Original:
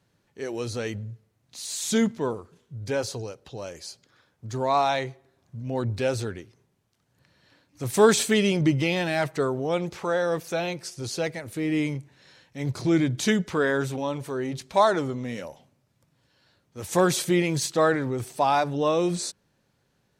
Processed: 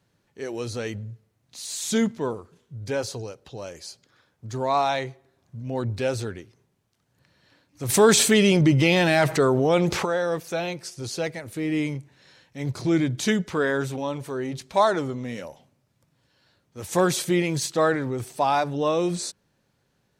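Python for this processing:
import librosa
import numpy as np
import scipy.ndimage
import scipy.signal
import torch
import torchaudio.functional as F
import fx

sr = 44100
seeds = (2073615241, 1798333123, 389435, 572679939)

y = fx.env_flatten(x, sr, amount_pct=50, at=(7.88, 10.04), fade=0.02)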